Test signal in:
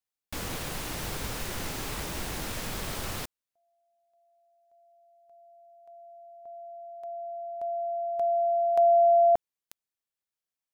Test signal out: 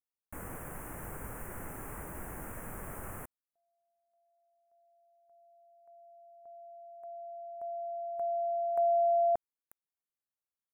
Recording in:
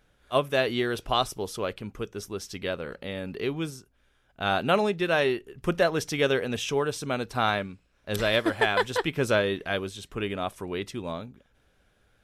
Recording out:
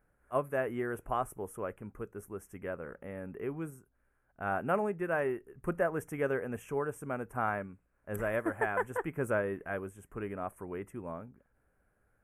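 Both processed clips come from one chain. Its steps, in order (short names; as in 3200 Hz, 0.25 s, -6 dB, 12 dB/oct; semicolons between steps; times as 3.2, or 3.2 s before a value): Chebyshev band-stop 1600–9800 Hz, order 2; gain -6.5 dB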